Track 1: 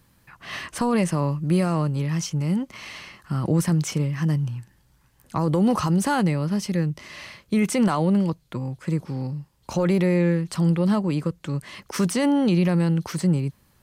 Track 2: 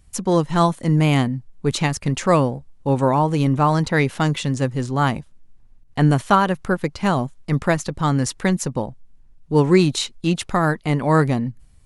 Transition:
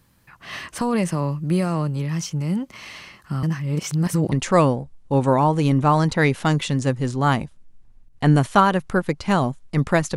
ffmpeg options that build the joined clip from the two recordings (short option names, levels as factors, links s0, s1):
-filter_complex "[0:a]apad=whole_dur=10.16,atrim=end=10.16,asplit=2[s0][s1];[s0]atrim=end=3.432[s2];[s1]atrim=start=3.428:end=4.322,asetpts=PTS-STARTPTS,areverse[s3];[1:a]atrim=start=2.068:end=7.91[s4];[s2][s3]acrossfade=d=0.004:c1=hsin:c2=hsin[s5];[s5][s4]acrossfade=d=0.004:c1=hsin:c2=hsin"